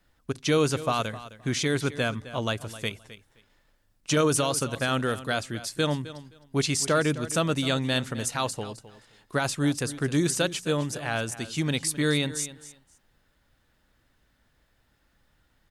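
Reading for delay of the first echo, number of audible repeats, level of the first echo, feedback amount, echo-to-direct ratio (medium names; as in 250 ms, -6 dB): 261 ms, 2, -15.5 dB, 18%, -15.5 dB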